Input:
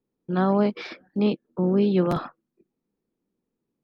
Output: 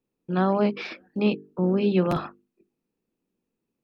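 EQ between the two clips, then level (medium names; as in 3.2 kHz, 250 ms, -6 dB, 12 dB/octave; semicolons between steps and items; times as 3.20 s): peaking EQ 2.6 kHz +8.5 dB 0.21 oct; hum notches 50/100/150/200/250/300/350/400/450 Hz; 0.0 dB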